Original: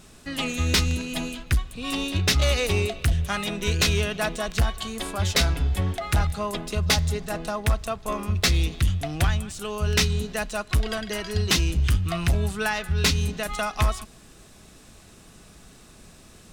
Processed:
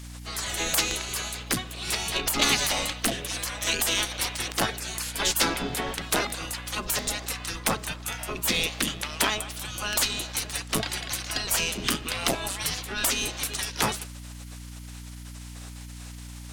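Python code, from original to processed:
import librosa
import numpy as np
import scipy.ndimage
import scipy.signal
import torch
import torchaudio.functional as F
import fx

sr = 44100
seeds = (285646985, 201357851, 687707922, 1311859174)

y = fx.spec_gate(x, sr, threshold_db=-20, keep='weak')
y = fx.add_hum(y, sr, base_hz=60, snr_db=11)
y = y * librosa.db_to_amplitude(8.5)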